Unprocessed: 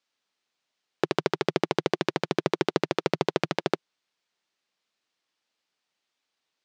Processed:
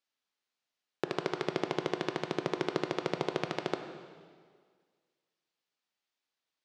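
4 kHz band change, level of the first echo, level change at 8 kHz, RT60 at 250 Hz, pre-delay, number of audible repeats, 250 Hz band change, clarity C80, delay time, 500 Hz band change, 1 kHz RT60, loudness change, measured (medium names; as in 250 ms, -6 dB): -7.5 dB, no echo, -7.5 dB, 1.8 s, 6 ms, no echo, -6.5 dB, 8.5 dB, no echo, -6.5 dB, 1.8 s, -7.0 dB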